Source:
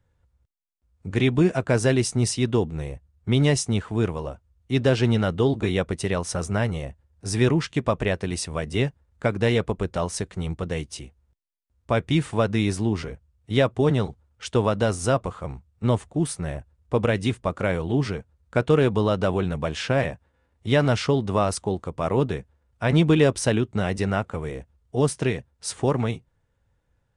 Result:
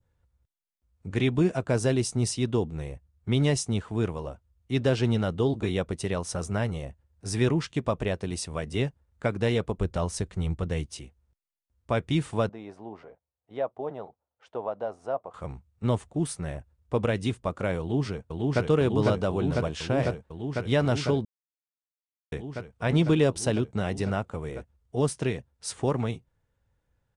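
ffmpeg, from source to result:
-filter_complex "[0:a]asettb=1/sr,asplit=3[a][b][c];[a]atrim=end=9.804[d];[b]atrim=start=9.8:end=10.86,asetpts=PTS-STARTPTS,afade=t=in:d=0.004:c=qsin,afade=t=out:st=1.056:d=0.004:c=qsin,lowshelf=f=100:g=10.5[e];[c]atrim=start=10.856[f];[d][e]acrossfade=d=0.004:c1=hsin:c2=qsin[g];[g][f]acrossfade=d=0.004:c1=qsin:c2=hsin,asettb=1/sr,asplit=3[h][i][j];[h]atrim=end=12.494[k];[i]atrim=start=12.49:end=15.34,asetpts=PTS-STARTPTS,afade=t=in:d=0.004:c=qsin,afade=t=out:st=2.846:d=0.004:c=qsin,bandpass=f=710:t=q:w=2.3[l];[j]atrim=start=15.336[m];[k][l]acrossfade=d=0.004:c1=hsin:c2=qsin[n];[n][m]acrossfade=d=0.004:c1=qsin:c2=hsin,asplit=2[o][p];[p]afade=t=in:st=17.8:d=0.01,afade=t=out:st=18.63:d=0.01,aecho=0:1:500|1000|1500|2000|2500|3000|3500|4000|4500|5000|5500|6000:0.891251|0.757563|0.643929|0.547339|0.465239|0.395453|0.336135|0.285715|0.242857|0.206429|0.175464|0.149145[q];[o][q]amix=inputs=2:normalize=0,asplit=3[r][s][t];[r]atrim=end=21.25,asetpts=PTS-STARTPTS,afade=t=out:st=21.246:d=0.004:c=hsin[u];[s]atrim=start=21.25:end=22.32,asetpts=PTS-STARTPTS,volume=0[v];[t]atrim=start=22.32,asetpts=PTS-STARTPTS,afade=t=in:d=0.004:c=hsin[w];[u][v][w]concat=n=3:v=0:a=1,adynamicequalizer=threshold=0.00794:dfrequency=1900:dqfactor=1.4:tfrequency=1900:tqfactor=1.4:attack=5:release=100:ratio=0.375:range=3:mode=cutabove:tftype=bell,volume=-4dB"

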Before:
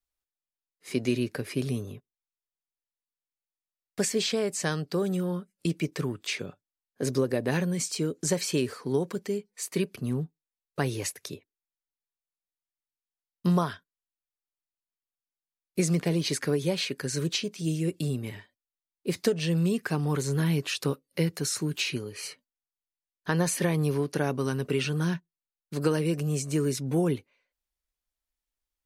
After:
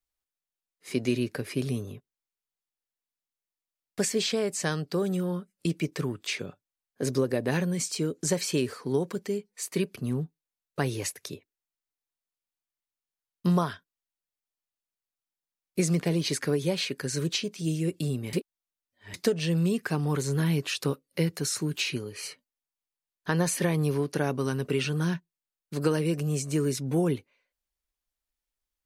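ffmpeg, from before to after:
-filter_complex "[0:a]asplit=3[a][b][c];[a]atrim=end=18.332[d];[b]atrim=start=18.328:end=19.142,asetpts=PTS-STARTPTS,areverse[e];[c]atrim=start=19.138[f];[d][e]acrossfade=d=0.004:c1=hsin:c2=hsin[g];[g][f]acrossfade=d=0.004:c1=hsin:c2=hsin"

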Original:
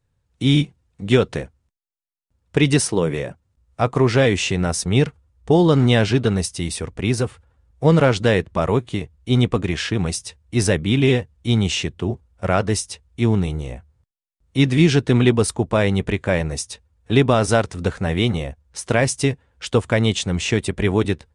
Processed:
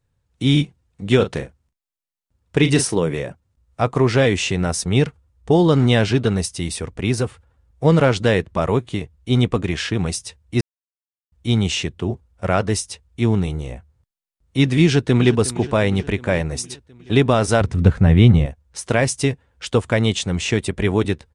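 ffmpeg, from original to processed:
-filter_complex "[0:a]asettb=1/sr,asplit=3[a][b][c];[a]atrim=end=1.164[d];[b]atrim=start=1.16:end=2.97,asetpts=PTS-STARTPTS,afade=t=in:d=0.004:c=qsin,afade=t=out:st=1.806:d=0.004:c=qsin,asplit=2[e][f];[f]adelay=38,volume=-9.5dB[g];[e][g]amix=inputs=2:normalize=0,atrim=end_sample=79821[h];[c]atrim=start=2.966[i];[d][h]acrossfade=d=0.004:c1=hsin:c2=qsin[j];[j][i]acrossfade=d=0.004:c1=qsin:c2=hsin,asplit=2[k][l];[l]afade=t=in:st=14.83:d=0.01,afade=t=out:st=15.31:d=0.01,aecho=0:1:360|720|1080|1440|1800|2160|2520:0.158489|0.103018|0.0669617|0.0435251|0.0282913|0.0183894|0.0119531[m];[k][m]amix=inputs=2:normalize=0,asettb=1/sr,asplit=3[n][o][p];[n]atrim=end=17.614[q];[o]atrim=start=17.61:end=18.46,asetpts=PTS-STARTPTS,afade=t=in:d=0.004:c=qsin,afade=t=out:st=0.846:d=0.004:c=qsin,bass=f=250:g=12,treble=f=4k:g=-7[r];[p]atrim=start=18.456[s];[q][r]acrossfade=d=0.004:c1=hsin:c2=qsin[t];[t][s]acrossfade=d=0.004:c1=qsin:c2=hsin,asplit=3[u][v][w];[u]atrim=end=10.61,asetpts=PTS-STARTPTS,afade=t=out:st=10.606:d=0.004:c=hsin[x];[v]atrim=start=10.61:end=11.32,asetpts=PTS-STARTPTS,volume=0[y];[w]atrim=start=11.32,asetpts=PTS-STARTPTS,afade=t=in:d=0.004:c=hsin[z];[x][y][z]concat=n=3:v=0:a=1"

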